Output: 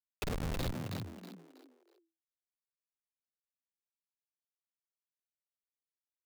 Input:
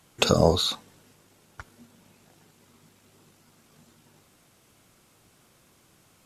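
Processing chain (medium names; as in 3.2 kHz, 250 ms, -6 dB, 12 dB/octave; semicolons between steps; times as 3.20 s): Schmitt trigger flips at -18.5 dBFS; frequency-shifting echo 321 ms, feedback 31%, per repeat +82 Hz, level -4 dB; trim -2.5 dB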